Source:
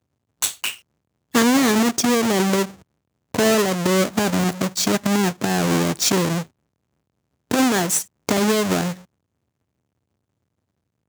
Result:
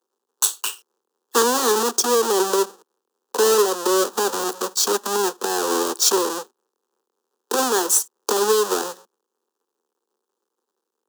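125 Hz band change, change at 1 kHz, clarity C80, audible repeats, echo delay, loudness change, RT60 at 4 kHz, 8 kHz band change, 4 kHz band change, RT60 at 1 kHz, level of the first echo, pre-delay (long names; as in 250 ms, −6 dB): below −20 dB, +2.0 dB, no reverb audible, no echo audible, no echo audible, 0.0 dB, no reverb audible, +3.0 dB, +0.5 dB, no reverb audible, no echo audible, no reverb audible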